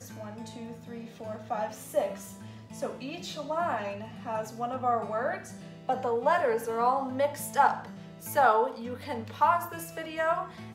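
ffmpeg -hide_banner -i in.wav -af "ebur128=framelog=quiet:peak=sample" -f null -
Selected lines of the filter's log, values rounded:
Integrated loudness:
  I:         -29.7 LUFS
  Threshold: -40.5 LUFS
Loudness range:
  LRA:         7.7 LU
  Threshold: -50.2 LUFS
  LRA low:   -35.2 LUFS
  LRA high:  -27.5 LUFS
Sample peak:
  Peak:      -10.4 dBFS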